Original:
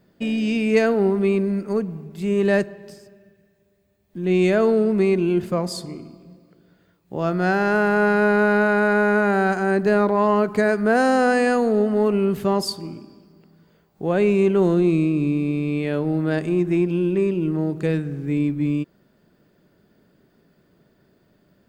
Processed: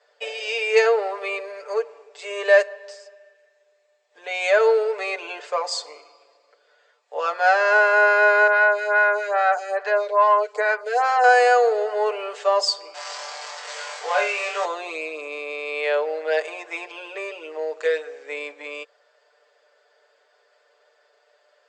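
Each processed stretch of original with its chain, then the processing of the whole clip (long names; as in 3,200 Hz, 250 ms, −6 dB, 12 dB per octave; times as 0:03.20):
0:08.47–0:11.24: low-shelf EQ 370 Hz −5.5 dB + phaser with staggered stages 2.4 Hz
0:12.94–0:14.65: converter with a step at zero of −29.5 dBFS + parametric band 360 Hz −11.5 dB 1.3 octaves + flutter between parallel walls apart 3.8 metres, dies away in 0.36 s
whole clip: Chebyshev band-pass filter 480–7,800 Hz, order 5; comb filter 6.8 ms, depth 93%; level +3 dB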